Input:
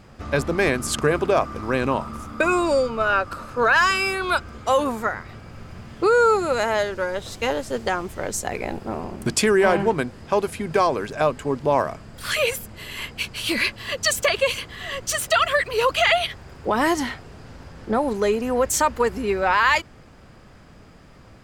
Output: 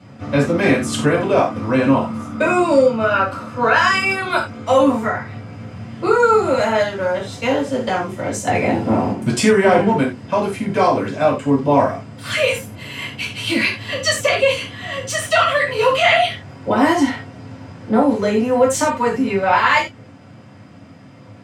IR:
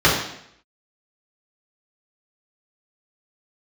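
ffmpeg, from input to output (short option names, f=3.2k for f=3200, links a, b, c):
-filter_complex "[0:a]asettb=1/sr,asplit=3[a][b][c];[a]atrim=end=8.474[d];[b]atrim=start=8.47:end=9.12,asetpts=PTS-STARTPTS,afade=t=in:d=0.004:c=qsin,afade=t=out:st=0.646:d=0.004:c=qsin,acontrast=48[e];[c]atrim=start=9.116[f];[d][e]acrossfade=d=0.004:c1=hsin:c2=qsin[g];[g][f]acrossfade=d=0.004:c1=qsin:c2=hsin[h];[1:a]atrim=start_sample=2205,afade=t=out:st=0.23:d=0.01,atrim=end_sample=10584,asetrate=74970,aresample=44100[i];[h][i]afir=irnorm=-1:irlink=0,volume=-15.5dB"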